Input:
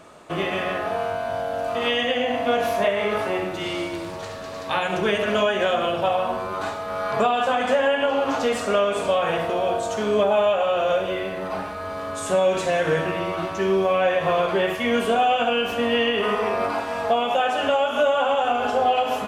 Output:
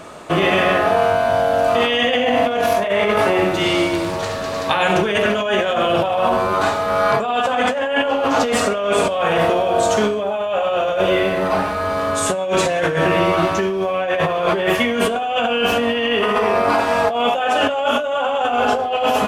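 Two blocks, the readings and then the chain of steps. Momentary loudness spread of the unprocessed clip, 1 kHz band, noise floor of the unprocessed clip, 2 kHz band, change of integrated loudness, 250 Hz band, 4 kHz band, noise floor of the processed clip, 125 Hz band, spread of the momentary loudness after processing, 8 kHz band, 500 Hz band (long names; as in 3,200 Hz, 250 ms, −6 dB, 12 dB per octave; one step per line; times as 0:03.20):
8 LU, +5.0 dB, −32 dBFS, +6.0 dB, +5.0 dB, +6.0 dB, +5.5 dB, −23 dBFS, +7.5 dB, 4 LU, +9.0 dB, +4.0 dB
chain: compressor whose output falls as the input rises −25 dBFS, ratio −1
level +7.5 dB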